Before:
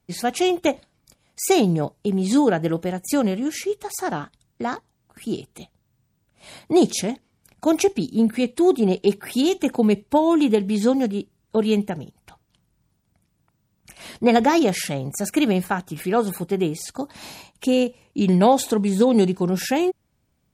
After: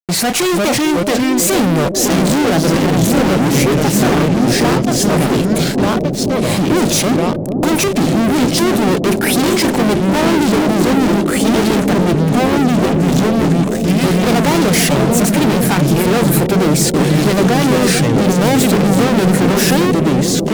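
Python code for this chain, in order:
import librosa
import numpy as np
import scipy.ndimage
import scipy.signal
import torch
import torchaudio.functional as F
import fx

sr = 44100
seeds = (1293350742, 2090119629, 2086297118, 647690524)

y = fx.hum_notches(x, sr, base_hz=50, count=2)
y = fx.echo_pitch(y, sr, ms=305, semitones=-3, count=2, db_per_echo=-6.0)
y = fx.fuzz(y, sr, gain_db=39.0, gate_db=-45.0)
y = fx.echo_bbd(y, sr, ms=443, stages=2048, feedback_pct=85, wet_db=-6)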